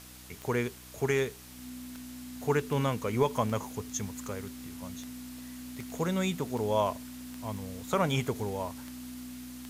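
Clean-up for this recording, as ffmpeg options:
-af "adeclick=t=4,bandreject=f=62.2:t=h:w=4,bandreject=f=124.4:t=h:w=4,bandreject=f=186.6:t=h:w=4,bandreject=f=248.8:t=h:w=4,bandreject=f=311:t=h:w=4,bandreject=f=250:w=30,afwtdn=0.0032"

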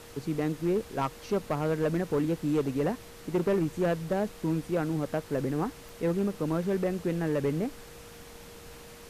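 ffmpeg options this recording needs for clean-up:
-af "adeclick=t=4,bandreject=f=470:w=30,afftdn=nr=28:nf=-48"

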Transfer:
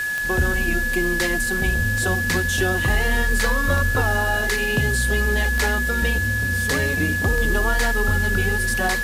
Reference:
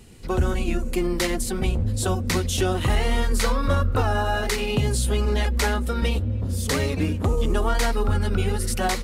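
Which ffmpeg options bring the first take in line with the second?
-af "adeclick=t=4,bandreject=f=1700:w=30,afwtdn=0.016"

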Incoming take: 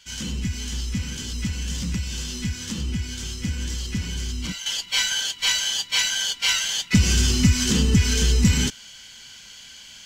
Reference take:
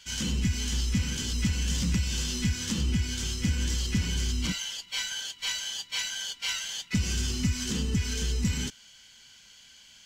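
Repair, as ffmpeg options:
-af "asetnsamples=n=441:p=0,asendcmd='4.66 volume volume -10dB',volume=1"

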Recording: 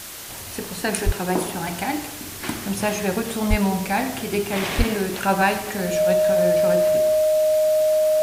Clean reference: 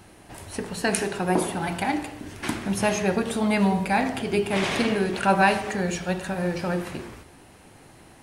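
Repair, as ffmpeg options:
-filter_complex "[0:a]bandreject=f=620:w=30,asplit=3[s0][s1][s2];[s0]afade=t=out:st=1.05:d=0.02[s3];[s1]highpass=f=140:w=0.5412,highpass=f=140:w=1.3066,afade=t=in:st=1.05:d=0.02,afade=t=out:st=1.17:d=0.02[s4];[s2]afade=t=in:st=1.17:d=0.02[s5];[s3][s4][s5]amix=inputs=3:normalize=0,asplit=3[s6][s7][s8];[s6]afade=t=out:st=3.49:d=0.02[s9];[s7]highpass=f=140:w=0.5412,highpass=f=140:w=1.3066,afade=t=in:st=3.49:d=0.02,afade=t=out:st=3.61:d=0.02[s10];[s8]afade=t=in:st=3.61:d=0.02[s11];[s9][s10][s11]amix=inputs=3:normalize=0,asplit=3[s12][s13][s14];[s12]afade=t=out:st=4.77:d=0.02[s15];[s13]highpass=f=140:w=0.5412,highpass=f=140:w=1.3066,afade=t=in:st=4.77:d=0.02,afade=t=out:st=4.89:d=0.02[s16];[s14]afade=t=in:st=4.89:d=0.02[s17];[s15][s16][s17]amix=inputs=3:normalize=0,afwtdn=0.018"

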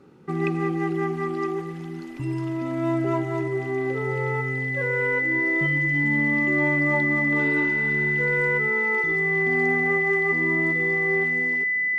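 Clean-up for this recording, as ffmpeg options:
-af "bandreject=f=2000:w=30"

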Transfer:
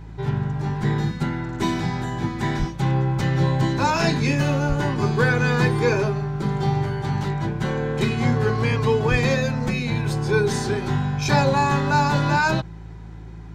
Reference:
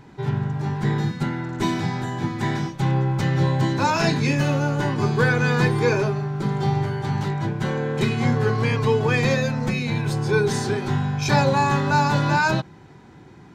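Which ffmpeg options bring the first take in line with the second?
-filter_complex "[0:a]bandreject=f=54.6:t=h:w=4,bandreject=f=109.2:t=h:w=4,bandreject=f=163.8:t=h:w=4,asplit=3[s0][s1][s2];[s0]afade=t=out:st=2.58:d=0.02[s3];[s1]highpass=f=140:w=0.5412,highpass=f=140:w=1.3066,afade=t=in:st=2.58:d=0.02,afade=t=out:st=2.7:d=0.02[s4];[s2]afade=t=in:st=2.7:d=0.02[s5];[s3][s4][s5]amix=inputs=3:normalize=0,asplit=3[s6][s7][s8];[s6]afade=t=out:st=4.68:d=0.02[s9];[s7]highpass=f=140:w=0.5412,highpass=f=140:w=1.3066,afade=t=in:st=4.68:d=0.02,afade=t=out:st=4.8:d=0.02[s10];[s8]afade=t=in:st=4.8:d=0.02[s11];[s9][s10][s11]amix=inputs=3:normalize=0,asplit=3[s12][s13][s14];[s12]afade=t=out:st=9.1:d=0.02[s15];[s13]highpass=f=140:w=0.5412,highpass=f=140:w=1.3066,afade=t=in:st=9.1:d=0.02,afade=t=out:st=9.22:d=0.02[s16];[s14]afade=t=in:st=9.22:d=0.02[s17];[s15][s16][s17]amix=inputs=3:normalize=0"

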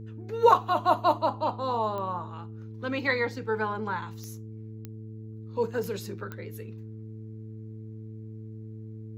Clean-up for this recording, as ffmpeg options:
-af "adeclick=t=4,bandreject=f=109.6:t=h:w=4,bandreject=f=219.2:t=h:w=4,bandreject=f=328.8:t=h:w=4,bandreject=f=438.4:t=h:w=4"

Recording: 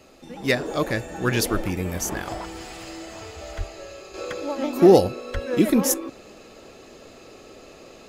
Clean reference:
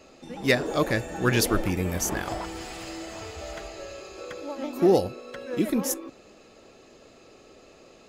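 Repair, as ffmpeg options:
-filter_complex "[0:a]asplit=3[s0][s1][s2];[s0]afade=t=out:st=3.57:d=0.02[s3];[s1]highpass=f=140:w=0.5412,highpass=f=140:w=1.3066,afade=t=in:st=3.57:d=0.02,afade=t=out:st=3.69:d=0.02[s4];[s2]afade=t=in:st=3.69:d=0.02[s5];[s3][s4][s5]amix=inputs=3:normalize=0,asplit=3[s6][s7][s8];[s6]afade=t=out:st=5.33:d=0.02[s9];[s7]highpass=f=140:w=0.5412,highpass=f=140:w=1.3066,afade=t=in:st=5.33:d=0.02,afade=t=out:st=5.45:d=0.02[s10];[s8]afade=t=in:st=5.45:d=0.02[s11];[s9][s10][s11]amix=inputs=3:normalize=0,agate=range=0.0891:threshold=0.0126,asetnsamples=n=441:p=0,asendcmd='4.14 volume volume -6.5dB',volume=1"

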